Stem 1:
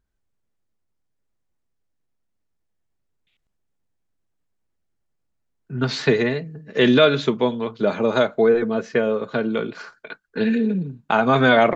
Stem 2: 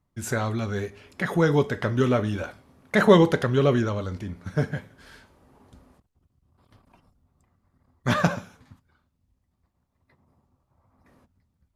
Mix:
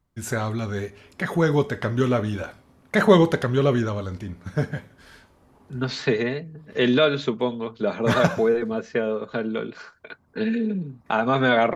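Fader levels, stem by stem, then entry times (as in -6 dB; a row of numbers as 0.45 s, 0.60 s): -4.0 dB, +0.5 dB; 0.00 s, 0.00 s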